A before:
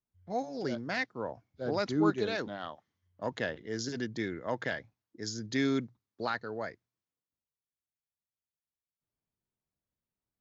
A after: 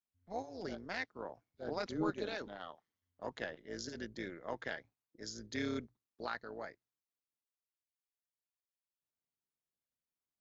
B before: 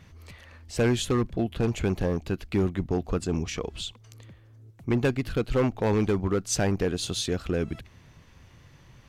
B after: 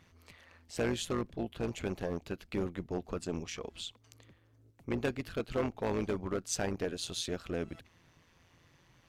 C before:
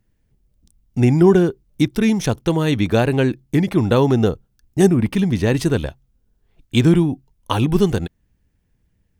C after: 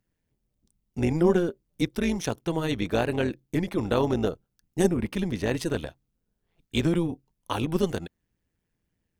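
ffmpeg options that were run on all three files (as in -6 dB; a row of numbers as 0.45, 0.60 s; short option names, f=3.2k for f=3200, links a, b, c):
-af "lowshelf=f=140:g=-10.5,tremolo=f=170:d=0.667,volume=-4dB"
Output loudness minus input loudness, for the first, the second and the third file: -8.5, -9.0, -9.5 LU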